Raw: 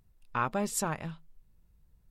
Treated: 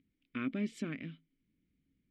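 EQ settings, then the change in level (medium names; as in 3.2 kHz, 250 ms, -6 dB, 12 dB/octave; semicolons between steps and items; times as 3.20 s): vowel filter i; treble shelf 5.3 kHz -11.5 dB; +11.5 dB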